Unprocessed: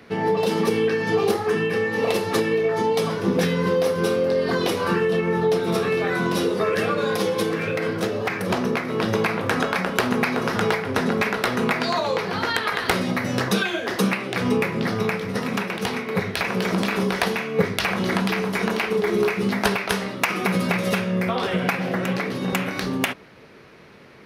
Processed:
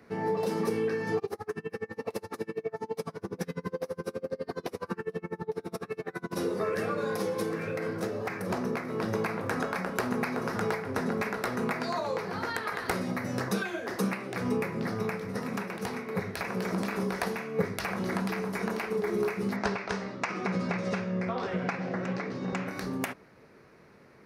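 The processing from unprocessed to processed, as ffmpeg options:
-filter_complex "[0:a]asplit=3[s0][s1][s2];[s0]afade=t=out:st=1.18:d=0.02[s3];[s1]aeval=exprs='val(0)*pow(10,-32*(0.5-0.5*cos(2*PI*12*n/s))/20)':c=same,afade=t=in:st=1.18:d=0.02,afade=t=out:st=6.35:d=0.02[s4];[s2]afade=t=in:st=6.35:d=0.02[s5];[s3][s4][s5]amix=inputs=3:normalize=0,asettb=1/sr,asplit=3[s6][s7][s8];[s6]atrim=end=19.564[s9];[s7]atrim=start=19.56:end=22.68,asetpts=PTS-STARTPTS,afade=t=in:d=0.004:c=qsin,afade=t=out:st=3.116:d=0.004:c=qsin,lowpass=f=6500:w=0.5412,lowpass=f=6500:w=1.3066[s10];[s8]atrim=start=22.676[s11];[s9][s10]acrossfade=d=0.004:c1=hsin:c2=qsin[s12];[s12][s11]acrossfade=d=0.004:c1=qsin:c2=hsin,equalizer=f=3200:t=o:w=0.74:g=-10.5,volume=0.398"

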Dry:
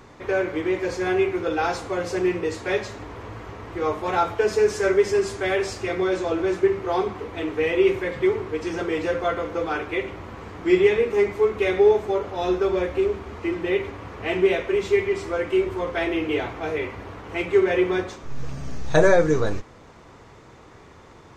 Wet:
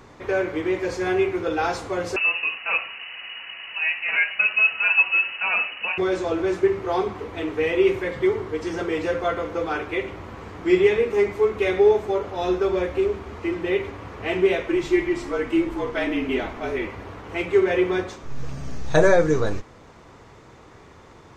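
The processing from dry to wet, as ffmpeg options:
-filter_complex "[0:a]asettb=1/sr,asplit=3[s0][s1][s2];[s0]atrim=end=2.164[s3];[s1]atrim=start=2.16:end=5.98,asetpts=PTS-STARTPTS,afade=t=in:d=0.004:c=qsin,afade=t=out:st=3.816:d=0.004:c=qsin,lowpass=f=2600:t=q:w=0.5098,lowpass=f=2600:t=q:w=0.6013,lowpass=f=2600:t=q:w=0.9,lowpass=f=2600:t=q:w=2.563,afreqshift=-3000[s4];[s2]atrim=start=5.976[s5];[s3][s4]acrossfade=d=0.004:c1=hsin:c2=qsin[s6];[s6][s5]acrossfade=d=0.004:c1=qsin:c2=hsin,asettb=1/sr,asplit=3[s7][s8][s9];[s7]atrim=end=8.144[s10];[s8]atrim=start=8.14:end=8.8,asetpts=PTS-STARTPTS,afade=t=in:d=0.004:c=qsin,afade=t=out:st=0.656:d=0.004:c=qsin,bandreject=f=2500:w=12[s11];[s9]atrim=start=8.796[s12];[s10][s11]acrossfade=d=0.004:c1=hsin:c2=qsin[s13];[s13][s12]acrossfade=d=0.004:c1=qsin:c2=hsin,asettb=1/sr,asplit=3[s14][s15][s16];[s14]atrim=end=14.684[s17];[s15]atrim=start=14.68:end=16.87,asetpts=PTS-STARTPTS,afade=t=in:d=0.004:c=qsin,afade=t=out:st=2.186:d=0.004:c=qsin,afreqshift=-46[s18];[s16]atrim=start=16.866[s19];[s17][s18]acrossfade=d=0.004:c1=hsin:c2=qsin[s20];[s20][s19]acrossfade=d=0.004:c1=qsin:c2=hsin"

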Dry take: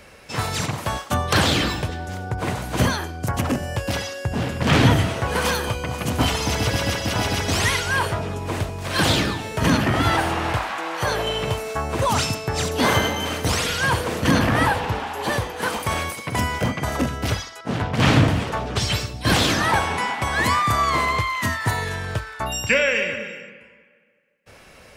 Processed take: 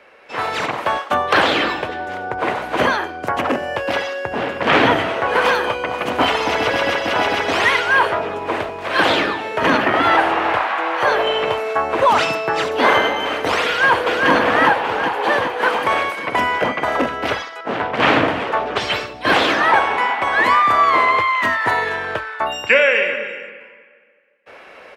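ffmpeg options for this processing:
-filter_complex "[0:a]asettb=1/sr,asplit=3[s0][s1][s2];[s0]atrim=end=12.204[s3];[s1]atrim=start=12.2:end=12.64,asetpts=PTS-STARTPTS,afade=t=in:d=0.004:c=qsin,afade=t=out:st=0.436:d=0.004:c=qsin,aecho=1:1:6.1:0.65,atrim=end_sample=19404[s4];[s2]atrim=start=12.636[s5];[s3][s4]acrossfade=d=0.004:c1=hsin:c2=qsin[s6];[s6][s5]acrossfade=d=0.004:c1=qsin:c2=hsin,asplit=2[s7][s8];[s8]afade=t=in:st=13.67:d=0.01,afade=t=out:st=14.3:d=0.01,aecho=0:1:390|780|1170|1560|1950|2340|2730|3120|3510|3900:0.707946|0.460165|0.299107|0.19442|0.126373|0.0821423|0.0533925|0.0347051|0.0225583|0.0146629[s9];[s7][s9]amix=inputs=2:normalize=0,acrossover=split=310 3200:gain=0.0708 1 0.1[s10][s11][s12];[s10][s11][s12]amix=inputs=3:normalize=0,dynaudnorm=f=160:g=5:m=2.51,volume=1.12"

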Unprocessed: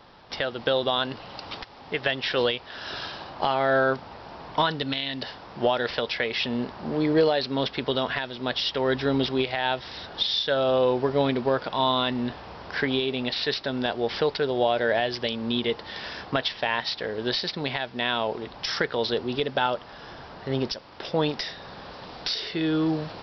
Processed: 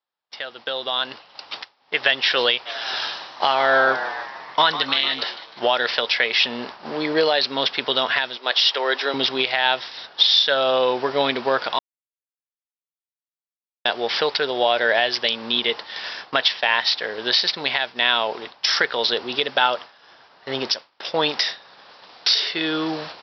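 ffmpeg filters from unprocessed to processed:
-filter_complex "[0:a]asplit=3[s0][s1][s2];[s0]afade=t=out:st=2.65:d=0.02[s3];[s1]asplit=9[s4][s5][s6][s7][s8][s9][s10][s11][s12];[s5]adelay=151,afreqshift=97,volume=0.251[s13];[s6]adelay=302,afreqshift=194,volume=0.164[s14];[s7]adelay=453,afreqshift=291,volume=0.106[s15];[s8]adelay=604,afreqshift=388,volume=0.0692[s16];[s9]adelay=755,afreqshift=485,volume=0.0447[s17];[s10]adelay=906,afreqshift=582,volume=0.0292[s18];[s11]adelay=1057,afreqshift=679,volume=0.0188[s19];[s12]adelay=1208,afreqshift=776,volume=0.0123[s20];[s4][s13][s14][s15][s16][s17][s18][s19][s20]amix=inputs=9:normalize=0,afade=t=in:st=2.65:d=0.02,afade=t=out:st=5.59:d=0.02[s21];[s2]afade=t=in:st=5.59:d=0.02[s22];[s3][s21][s22]amix=inputs=3:normalize=0,asettb=1/sr,asplit=3[s23][s24][s25];[s23]atrim=end=8.374[s26];[s24]atrim=start=8.37:end=9.14,asetpts=PTS-STARTPTS,afade=t=in:d=0.004:c=qsin,afade=t=out:st=0.766:d=0.004:c=qsin,highpass=f=340:w=0.5412,highpass=f=340:w=1.3066[s27];[s25]atrim=start=9.136[s28];[s26][s27]acrossfade=d=0.004:c1=hsin:c2=qsin[s29];[s29][s28]acrossfade=d=0.004:c1=qsin:c2=hsin,asplit=3[s30][s31][s32];[s30]atrim=end=11.79,asetpts=PTS-STARTPTS,afade=t=out:st=11.786:d=0.004:c=hsin[s33];[s31]atrim=start=11.79:end=13.85,asetpts=PTS-STARTPTS,volume=0[s34];[s32]atrim=start=13.85,asetpts=PTS-STARTPTS,afade=t=in:d=0.004:c=hsin[s35];[s33][s34][s35]concat=n=3:v=0:a=1,agate=range=0.0224:threshold=0.0251:ratio=3:detection=peak,highpass=f=1300:p=1,dynaudnorm=f=110:g=21:m=3.76"

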